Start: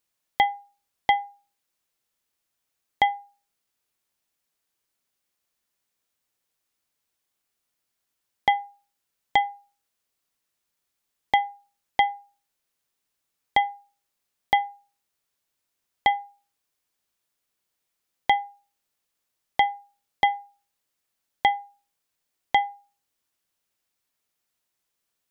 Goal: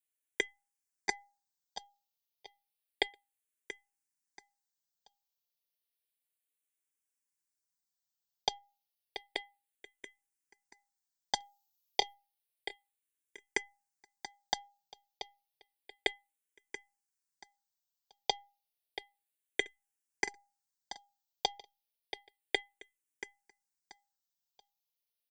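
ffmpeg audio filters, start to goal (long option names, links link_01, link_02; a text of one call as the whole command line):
ffmpeg -i in.wav -filter_complex "[0:a]asettb=1/sr,asplit=3[link_01][link_02][link_03];[link_01]atrim=end=11.344[link_04];[link_02]atrim=start=11.34:end=12.14,asetpts=PTS-STARTPTS,afade=type=in:duration=0.004:curve=qsin,afade=type=out:start_time=0.796:duration=0.004:curve=qsin,aemphasis=mode=production:type=cd[link_05];[link_03]atrim=start=12.136[link_06];[link_04][link_05]acrossfade=duration=0.004:curve1=hsin:curve2=qsin[link_07];[link_07][link_06]acrossfade=duration=0.004:curve1=qsin:curve2=hsin,acrossover=split=3200[link_08][link_09];[link_09]acompressor=threshold=-47dB:ratio=4:attack=1:release=60[link_10];[link_08][link_10]amix=inputs=2:normalize=0,highshelf=frequency=3300:gain=10.5,aecho=1:1:6.8:0.59,asettb=1/sr,asplit=3[link_11][link_12][link_13];[link_11]atrim=end=8.584[link_14];[link_12]atrim=start=8.58:end=9.36,asetpts=PTS-STARTPTS,afade=type=in:duration=0.004:curve=qsin,afade=type=out:start_time=0.776:duration=0.004:curve=qsin,acompressor=threshold=-44dB:ratio=6[link_15];[link_13]atrim=start=9.356[link_16];[link_14][link_15]acrossfade=duration=0.004:curve1=hsin:curve2=qsin[link_17];[link_17][link_16]acrossfade=duration=0.004:curve1=qsin:curve2=hsin,aeval=exprs='0.562*(cos(1*acos(clip(val(0)/0.562,-1,1)))-cos(1*PI/2))+0.00447*(cos(2*acos(clip(val(0)/0.562,-1,1)))-cos(2*PI/2))+0.224*(cos(3*acos(clip(val(0)/0.562,-1,1)))-cos(3*PI/2))+0.00891*(cos(4*acos(clip(val(0)/0.562,-1,1)))-cos(4*PI/2))':channel_layout=same,asuperstop=centerf=1200:order=4:qfactor=4.3,aecho=1:1:682|1364|2046:0.266|0.0745|0.0209,asplit=2[link_18][link_19];[link_19]afreqshift=-0.31[link_20];[link_18][link_20]amix=inputs=2:normalize=1,volume=-2dB" out.wav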